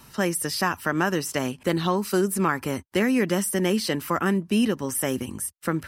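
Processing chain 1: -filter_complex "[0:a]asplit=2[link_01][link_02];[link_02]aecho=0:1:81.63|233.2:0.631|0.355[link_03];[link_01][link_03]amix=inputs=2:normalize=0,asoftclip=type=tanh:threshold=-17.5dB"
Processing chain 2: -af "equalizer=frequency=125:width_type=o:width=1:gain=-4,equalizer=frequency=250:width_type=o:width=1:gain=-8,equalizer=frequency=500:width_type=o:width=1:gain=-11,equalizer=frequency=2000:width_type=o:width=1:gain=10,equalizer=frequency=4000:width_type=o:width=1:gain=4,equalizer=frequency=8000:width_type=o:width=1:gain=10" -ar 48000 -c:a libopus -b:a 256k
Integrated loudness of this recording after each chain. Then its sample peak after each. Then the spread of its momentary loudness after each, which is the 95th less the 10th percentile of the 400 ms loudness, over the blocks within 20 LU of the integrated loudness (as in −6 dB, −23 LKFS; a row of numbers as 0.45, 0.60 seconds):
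−25.0, −22.0 LKFS; −17.5, −6.0 dBFS; 4, 6 LU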